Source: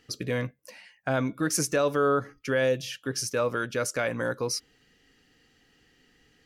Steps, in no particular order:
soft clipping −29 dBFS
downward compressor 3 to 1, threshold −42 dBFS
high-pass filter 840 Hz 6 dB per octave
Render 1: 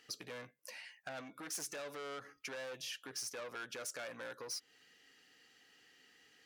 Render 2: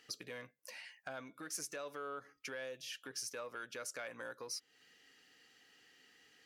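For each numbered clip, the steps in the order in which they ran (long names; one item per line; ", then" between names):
soft clipping, then downward compressor, then high-pass filter
downward compressor, then soft clipping, then high-pass filter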